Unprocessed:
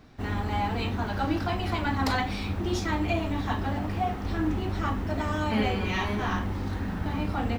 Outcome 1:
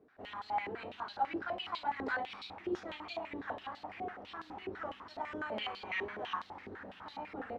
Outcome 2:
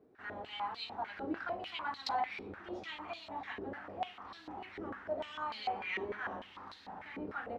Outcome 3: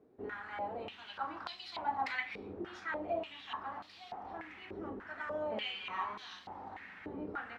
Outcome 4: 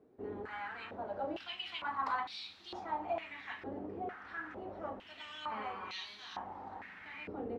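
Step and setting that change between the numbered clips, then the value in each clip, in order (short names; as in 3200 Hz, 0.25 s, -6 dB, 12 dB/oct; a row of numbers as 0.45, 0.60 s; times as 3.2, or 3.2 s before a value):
stepped band-pass, rate: 12, 6.7, 3.4, 2.2 Hz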